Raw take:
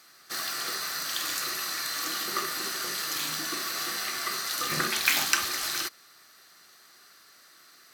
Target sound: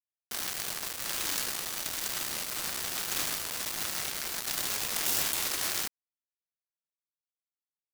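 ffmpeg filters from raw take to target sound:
-af "afftfilt=real='re*lt(hypot(re,im),0.0562)':imag='im*lt(hypot(re,im),0.0562)':win_size=1024:overlap=0.75,aeval=exprs='sgn(val(0))*max(abs(val(0))-0.00631,0)':c=same,acrusher=bits=4:mix=0:aa=0.000001,volume=3dB"

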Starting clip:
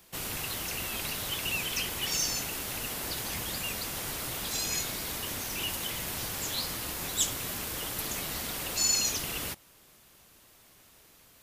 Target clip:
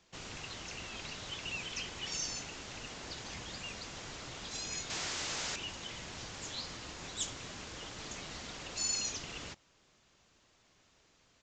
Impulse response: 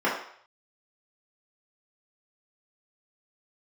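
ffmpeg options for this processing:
-filter_complex "[0:a]asettb=1/sr,asplit=3[a][b][c];[a]atrim=end=4.904[d];[b]atrim=start=4.9:end=5.56,asetpts=PTS-STARTPTS,afade=t=in:d=0.004:c=qsin,afade=t=out:st=0.656:d=0.004:c=qsin,aeval=exprs='0.0708*sin(PI/2*8.91*val(0)/0.0708)':c=same[e];[c]atrim=start=5.556[f];[d][e]acrossfade=d=0.004:c1=hsin:c2=qsin[g];[g][f]acrossfade=d=0.004:c1=qsin:c2=hsin,aresample=16000,aresample=44100,volume=-7.5dB"

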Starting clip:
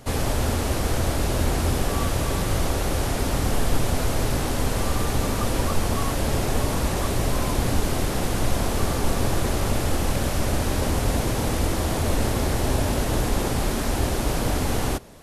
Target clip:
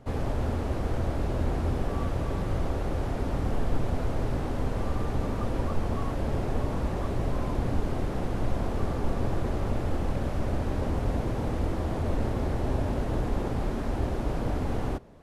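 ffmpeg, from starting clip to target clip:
-af "lowpass=f=1k:p=1,volume=-4.5dB"

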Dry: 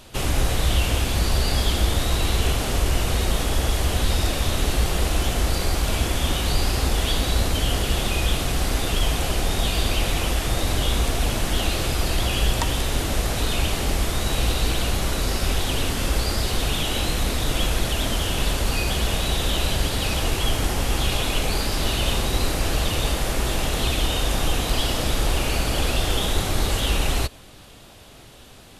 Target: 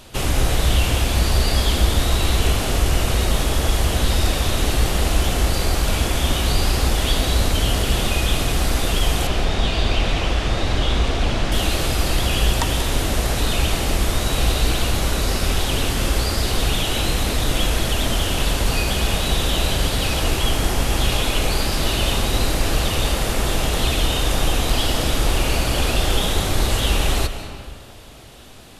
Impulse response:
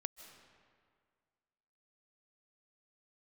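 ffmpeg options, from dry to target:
-filter_complex "[0:a]asettb=1/sr,asplit=3[a][b][c];[a]atrim=end=9.274[d];[b]atrim=start=9.27:end=11.52,asetpts=PTS-STARTPTS,afade=t=in:d=0.004:c=qsin,afade=t=out:st=2.246:d=0.004:c=qsin,lowpass=4.8k[e];[c]atrim=start=11.516[f];[d][e]acrossfade=d=0.004:c1=hsin:c2=qsin[g];[g][f]acrossfade=d=0.004:c1=qsin:c2=hsin[h];[1:a]atrim=start_sample=2205[i];[h][i]afir=irnorm=-1:irlink=0,volume=5.5dB"

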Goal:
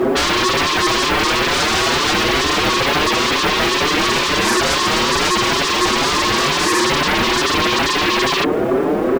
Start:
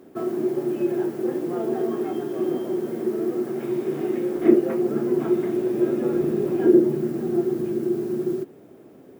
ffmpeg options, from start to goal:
-filter_complex "[0:a]asplit=2[a][b];[b]highpass=f=720:p=1,volume=36dB,asoftclip=type=tanh:threshold=-2.5dB[c];[a][c]amix=inputs=2:normalize=0,lowpass=f=1.1k:p=1,volume=-6dB,aeval=exprs='0.75*sin(PI/2*7.94*val(0)/0.75)':c=same,asplit=2[d][e];[e]adelay=5.8,afreqshift=2.2[f];[d][f]amix=inputs=2:normalize=1,volume=-7dB"

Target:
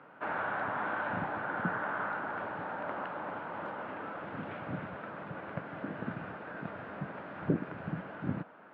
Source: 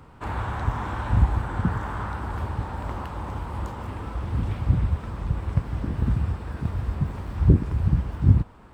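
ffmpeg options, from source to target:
-af "highpass=f=200:w=0.5412,highpass=f=200:w=1.3066,equalizer=f=230:t=q:w=4:g=-6,equalizer=f=370:t=q:w=4:g=-4,equalizer=f=620:t=q:w=4:g=7,equalizer=f=1k:t=q:w=4:g=-3,equalizer=f=1.5k:t=q:w=4:g=8,lowpass=f=2.9k:w=0.5412,lowpass=f=2.9k:w=1.3066,volume=-3dB"

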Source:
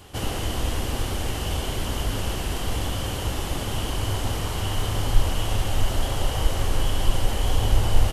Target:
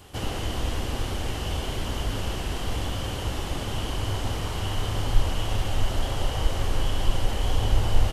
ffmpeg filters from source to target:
-filter_complex "[0:a]acrossover=split=7000[a][b];[b]acompressor=threshold=-46dB:ratio=4:attack=1:release=60[c];[a][c]amix=inputs=2:normalize=0,volume=-2dB"

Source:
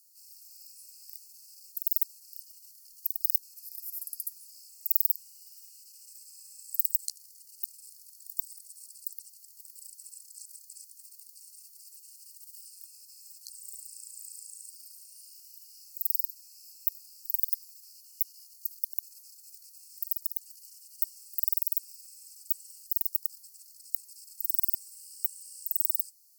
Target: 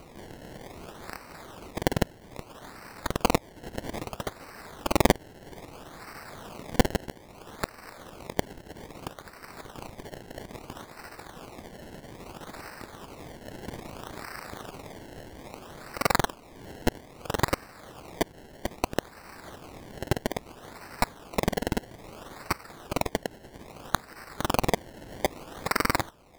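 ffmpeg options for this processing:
-filter_complex "[0:a]asplit=2[a][b];[b]acompressor=mode=upward:threshold=-33dB:ratio=2.5,volume=-3dB[c];[a][c]amix=inputs=2:normalize=0,acrusher=samples=25:mix=1:aa=0.000001:lfo=1:lforange=25:lforate=0.61,volume=-1.5dB"

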